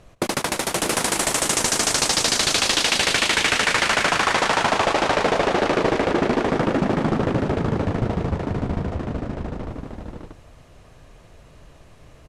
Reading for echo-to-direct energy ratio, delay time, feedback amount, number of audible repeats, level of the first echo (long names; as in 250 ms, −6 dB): −1.5 dB, 96 ms, repeats not evenly spaced, 5, −17.0 dB